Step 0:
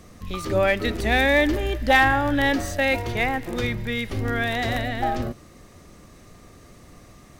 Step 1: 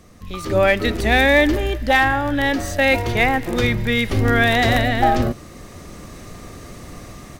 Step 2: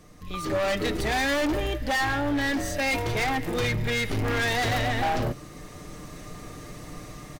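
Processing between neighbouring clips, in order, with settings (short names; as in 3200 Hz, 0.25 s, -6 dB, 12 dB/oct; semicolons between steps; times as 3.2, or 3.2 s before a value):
AGC gain up to 12 dB; gain -1 dB
comb 6.6 ms, depth 45%; hard clip -18.5 dBFS, distortion -6 dB; pre-echo 35 ms -16.5 dB; gain -4.5 dB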